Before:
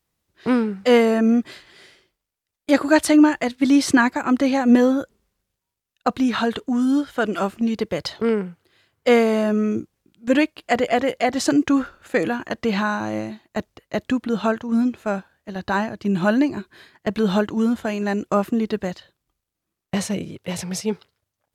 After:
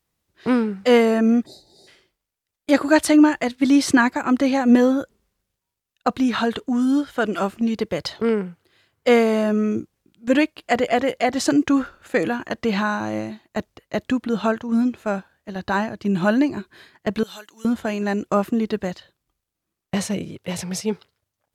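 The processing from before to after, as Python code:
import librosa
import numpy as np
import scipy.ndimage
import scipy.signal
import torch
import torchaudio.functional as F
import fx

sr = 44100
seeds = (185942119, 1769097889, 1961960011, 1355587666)

y = fx.spec_box(x, sr, start_s=1.46, length_s=0.41, low_hz=890.0, high_hz=3600.0, gain_db=-29)
y = fx.differentiator(y, sr, at=(17.23, 17.65))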